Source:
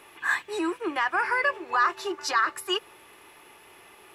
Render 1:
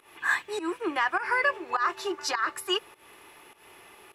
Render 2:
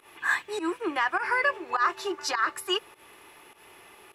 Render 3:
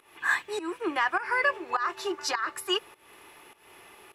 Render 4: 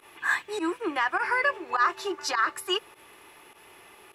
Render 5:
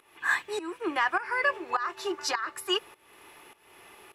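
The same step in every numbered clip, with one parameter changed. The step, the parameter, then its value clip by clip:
pump, release: 178, 114, 283, 64, 447 ms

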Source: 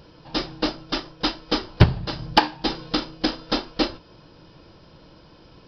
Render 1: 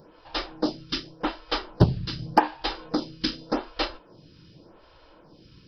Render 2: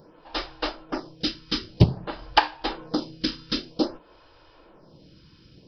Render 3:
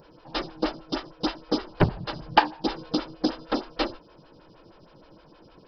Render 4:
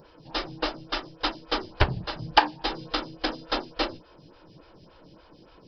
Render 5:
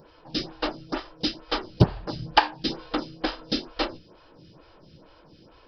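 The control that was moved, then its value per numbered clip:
photocell phaser, rate: 0.86, 0.52, 6.4, 3.5, 2.2 Hz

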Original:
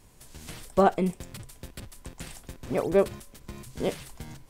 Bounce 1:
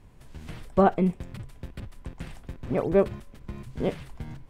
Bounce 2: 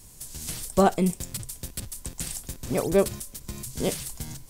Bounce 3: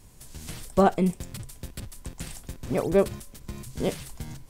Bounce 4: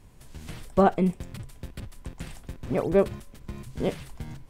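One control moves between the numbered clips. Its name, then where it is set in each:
tone controls, treble: -14, +14, +4, -6 dB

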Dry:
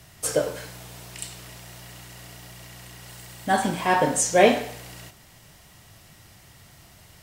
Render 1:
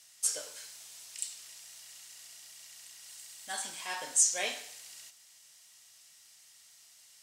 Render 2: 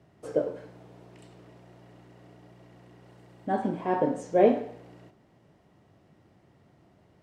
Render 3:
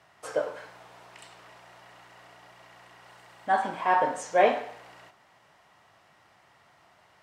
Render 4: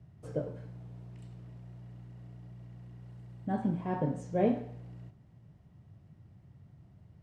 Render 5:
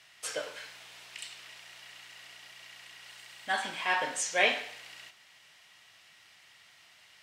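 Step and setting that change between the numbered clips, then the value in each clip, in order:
band-pass, frequency: 7000, 330, 1000, 130, 2600 Hz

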